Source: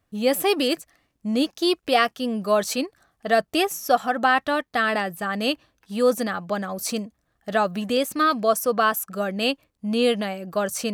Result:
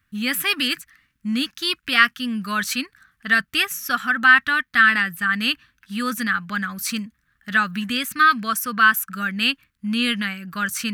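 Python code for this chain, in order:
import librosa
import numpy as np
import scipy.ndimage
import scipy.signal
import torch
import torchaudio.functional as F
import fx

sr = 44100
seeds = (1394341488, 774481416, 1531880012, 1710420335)

y = fx.curve_eq(x, sr, hz=(240.0, 340.0, 650.0, 1500.0, 5000.0, 7700.0, 14000.0), db=(0, -13, -22, 10, 0, -1, 3))
y = y * librosa.db_to_amplitude(1.5)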